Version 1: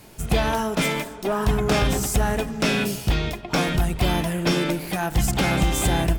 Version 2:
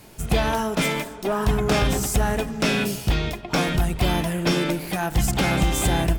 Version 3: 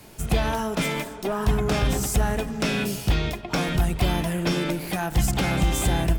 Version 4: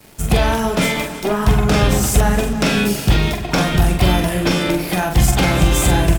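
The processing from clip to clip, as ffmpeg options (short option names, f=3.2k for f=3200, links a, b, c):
-af anull
-filter_complex "[0:a]acrossover=split=160[a][b];[b]acompressor=threshold=-25dB:ratio=2[c];[a][c]amix=inputs=2:normalize=0"
-filter_complex "[0:a]aeval=exprs='sgn(val(0))*max(abs(val(0))-0.00355,0)':c=same,asplit=2[a][b];[b]adelay=44,volume=-5dB[c];[a][c]amix=inputs=2:normalize=0,aecho=1:1:325|650|975|1300|1625:0.168|0.0923|0.0508|0.0279|0.0154,volume=7.5dB"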